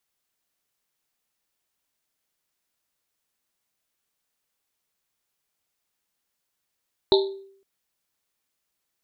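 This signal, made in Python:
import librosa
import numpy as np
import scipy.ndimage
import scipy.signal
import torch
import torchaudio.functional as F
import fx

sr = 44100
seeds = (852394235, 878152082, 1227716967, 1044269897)

y = fx.risset_drum(sr, seeds[0], length_s=0.51, hz=390.0, decay_s=0.63, noise_hz=3900.0, noise_width_hz=640.0, noise_pct=25)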